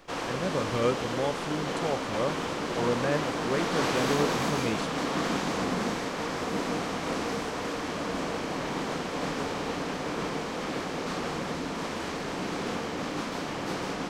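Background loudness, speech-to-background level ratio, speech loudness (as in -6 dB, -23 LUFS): -31.5 LUFS, -1.0 dB, -32.5 LUFS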